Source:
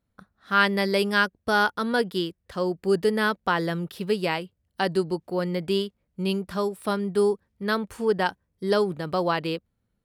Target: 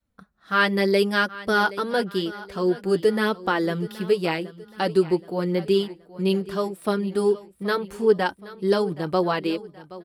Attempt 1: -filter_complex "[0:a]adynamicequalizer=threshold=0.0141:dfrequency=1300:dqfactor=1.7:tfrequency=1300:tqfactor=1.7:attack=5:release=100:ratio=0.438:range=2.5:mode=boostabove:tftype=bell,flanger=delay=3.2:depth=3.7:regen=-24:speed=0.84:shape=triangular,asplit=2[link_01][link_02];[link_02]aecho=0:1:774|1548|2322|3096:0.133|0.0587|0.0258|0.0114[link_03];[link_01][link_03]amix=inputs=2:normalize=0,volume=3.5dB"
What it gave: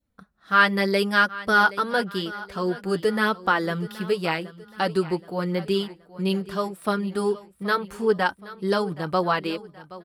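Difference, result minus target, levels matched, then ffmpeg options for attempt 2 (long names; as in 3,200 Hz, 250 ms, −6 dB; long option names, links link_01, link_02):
1,000 Hz band +3.0 dB
-filter_complex "[0:a]adynamicequalizer=threshold=0.0141:dfrequency=360:dqfactor=1.7:tfrequency=360:tqfactor=1.7:attack=5:release=100:ratio=0.438:range=2.5:mode=boostabove:tftype=bell,flanger=delay=3.2:depth=3.7:regen=-24:speed=0.84:shape=triangular,asplit=2[link_01][link_02];[link_02]aecho=0:1:774|1548|2322|3096:0.133|0.0587|0.0258|0.0114[link_03];[link_01][link_03]amix=inputs=2:normalize=0,volume=3.5dB"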